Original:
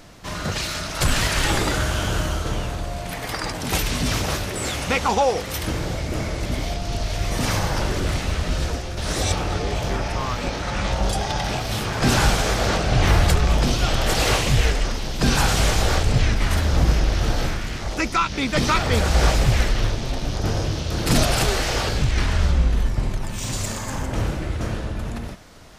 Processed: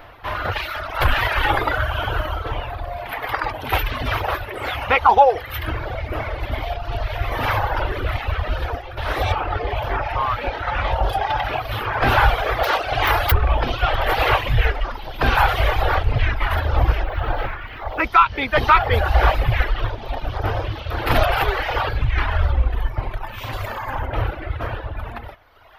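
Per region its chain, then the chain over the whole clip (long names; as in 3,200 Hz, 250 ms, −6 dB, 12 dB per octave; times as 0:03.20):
0:12.63–0:13.32: bass and treble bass −9 dB, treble +11 dB + wrap-around overflow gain 8 dB
0:17.03–0:18.04: running median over 5 samples + high-shelf EQ 3,900 Hz −7 dB + mains-hum notches 50/100/150/200/250/300/350/400/450 Hz
whole clip: low-shelf EQ 360 Hz +9 dB; reverb reduction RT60 1.6 s; drawn EQ curve 110 Hz 0 dB, 170 Hz −15 dB, 310 Hz −1 dB, 840 Hz +14 dB, 1,500 Hz +13 dB, 3,200 Hz +8 dB, 7,800 Hz −20 dB, 13,000 Hz +6 dB; level −5.5 dB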